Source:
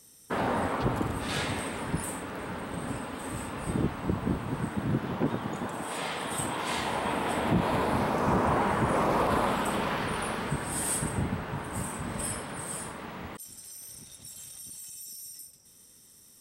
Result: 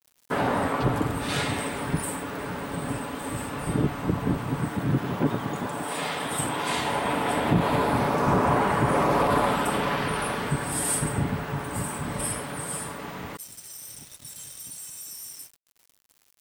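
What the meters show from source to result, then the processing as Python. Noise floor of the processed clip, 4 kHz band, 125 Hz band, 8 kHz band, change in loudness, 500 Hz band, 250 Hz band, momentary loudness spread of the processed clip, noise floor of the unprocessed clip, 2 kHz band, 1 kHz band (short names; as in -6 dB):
-65 dBFS, +4.0 dB, +4.5 dB, +4.0 dB, +4.0 dB, +4.0 dB, +3.5 dB, 15 LU, -56 dBFS, +4.0 dB, +4.0 dB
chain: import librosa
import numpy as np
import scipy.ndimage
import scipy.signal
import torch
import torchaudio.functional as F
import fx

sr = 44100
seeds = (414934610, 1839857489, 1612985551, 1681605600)

y = x + 0.33 * np.pad(x, (int(7.0 * sr / 1000.0), 0))[:len(x)]
y = fx.vibrato(y, sr, rate_hz=0.33, depth_cents=5.1)
y = np.where(np.abs(y) >= 10.0 ** (-46.5 / 20.0), y, 0.0)
y = F.gain(torch.from_numpy(y), 3.5).numpy()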